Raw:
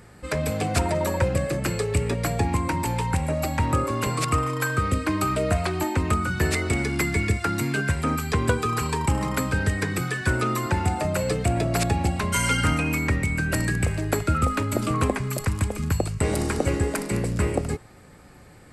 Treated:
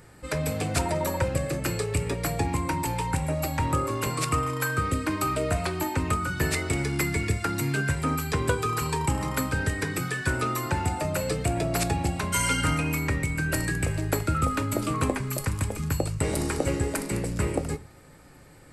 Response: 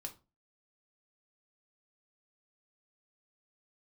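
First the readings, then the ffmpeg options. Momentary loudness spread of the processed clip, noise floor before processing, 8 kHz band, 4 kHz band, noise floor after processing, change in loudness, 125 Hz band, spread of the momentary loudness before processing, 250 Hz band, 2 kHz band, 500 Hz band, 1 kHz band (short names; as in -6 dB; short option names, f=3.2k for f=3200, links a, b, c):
3 LU, -48 dBFS, -0.5 dB, -1.5 dB, -51 dBFS, -2.5 dB, -3.0 dB, 3 LU, -3.0 dB, -2.5 dB, -3.0 dB, -2.5 dB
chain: -filter_complex "[0:a]asplit=2[a][b];[1:a]atrim=start_sample=2205,highshelf=f=6.3k:g=9[c];[b][c]afir=irnorm=-1:irlink=0,volume=1dB[d];[a][d]amix=inputs=2:normalize=0,volume=-7dB"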